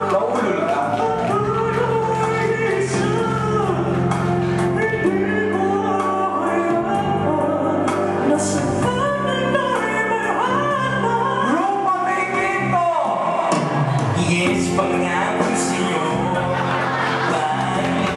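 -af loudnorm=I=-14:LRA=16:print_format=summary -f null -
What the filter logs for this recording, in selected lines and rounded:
Input Integrated:    -19.2 LUFS
Input True Peak:      -6.3 dBTP
Input LRA:             0.7 LU
Input Threshold:     -29.2 LUFS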